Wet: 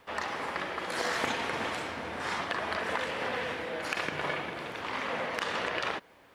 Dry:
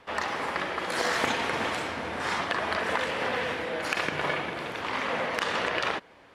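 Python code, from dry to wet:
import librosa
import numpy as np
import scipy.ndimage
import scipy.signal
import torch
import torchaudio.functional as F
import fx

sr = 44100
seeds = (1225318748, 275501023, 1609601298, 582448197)

y = fx.quant_dither(x, sr, seeds[0], bits=12, dither='triangular')
y = y * librosa.db_to_amplitude(-4.0)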